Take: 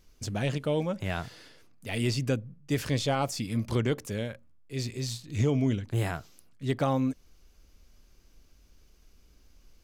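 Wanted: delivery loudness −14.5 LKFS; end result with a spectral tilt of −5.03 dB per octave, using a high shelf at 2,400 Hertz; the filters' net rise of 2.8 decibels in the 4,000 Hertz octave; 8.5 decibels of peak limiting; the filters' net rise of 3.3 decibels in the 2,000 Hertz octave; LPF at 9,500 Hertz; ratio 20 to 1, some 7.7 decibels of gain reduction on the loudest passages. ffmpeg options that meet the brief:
ffmpeg -i in.wav -af "lowpass=9500,equalizer=frequency=2000:width_type=o:gain=5,highshelf=frequency=2400:gain=-5.5,equalizer=frequency=4000:width_type=o:gain=7,acompressor=threshold=-29dB:ratio=20,volume=23dB,alimiter=limit=-3dB:level=0:latency=1" out.wav

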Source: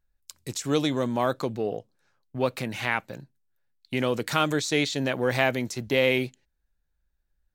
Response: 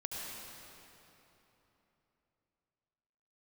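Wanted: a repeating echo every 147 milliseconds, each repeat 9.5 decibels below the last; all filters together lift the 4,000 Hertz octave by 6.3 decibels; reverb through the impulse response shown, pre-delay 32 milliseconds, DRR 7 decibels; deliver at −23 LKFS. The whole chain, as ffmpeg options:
-filter_complex "[0:a]equalizer=frequency=4000:width_type=o:gain=8,aecho=1:1:147|294|441|588:0.335|0.111|0.0365|0.012,asplit=2[link_01][link_02];[1:a]atrim=start_sample=2205,adelay=32[link_03];[link_02][link_03]afir=irnorm=-1:irlink=0,volume=-8.5dB[link_04];[link_01][link_04]amix=inputs=2:normalize=0,volume=1dB"

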